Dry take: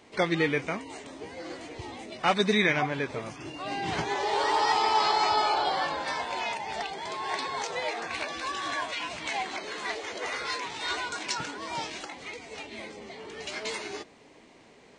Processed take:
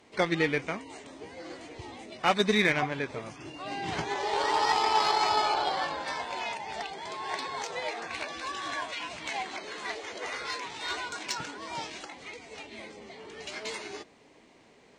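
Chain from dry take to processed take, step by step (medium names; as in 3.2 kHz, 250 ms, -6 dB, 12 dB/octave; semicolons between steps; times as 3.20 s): Chebyshev shaper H 7 -27 dB, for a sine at -10 dBFS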